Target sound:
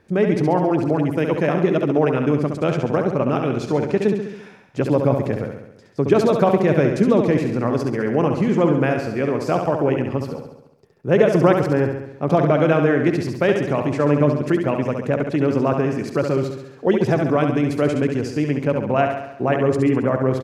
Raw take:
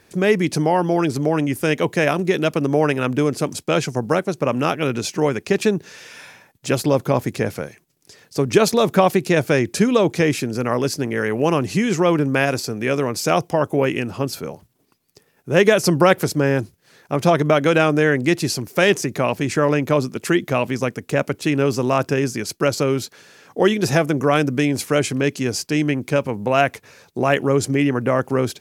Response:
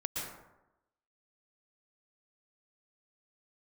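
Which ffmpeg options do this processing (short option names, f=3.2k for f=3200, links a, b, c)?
-af "lowpass=f=1.1k:p=1,atempo=1.4,aecho=1:1:68|136|204|272|340|408|476|544:0.501|0.291|0.169|0.0978|0.0567|0.0329|0.0191|0.0111"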